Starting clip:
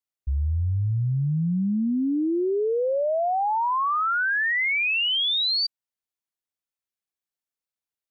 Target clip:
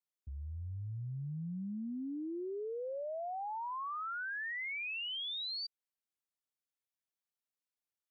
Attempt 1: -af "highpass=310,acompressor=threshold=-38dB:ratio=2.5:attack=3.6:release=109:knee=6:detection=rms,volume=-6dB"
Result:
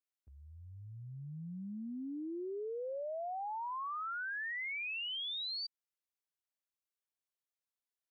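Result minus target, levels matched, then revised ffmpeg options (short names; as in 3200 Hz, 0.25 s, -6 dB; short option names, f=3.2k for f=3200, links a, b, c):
125 Hz band -6.5 dB
-af "highpass=100,acompressor=threshold=-38dB:ratio=2.5:attack=3.6:release=109:knee=6:detection=rms,volume=-6dB"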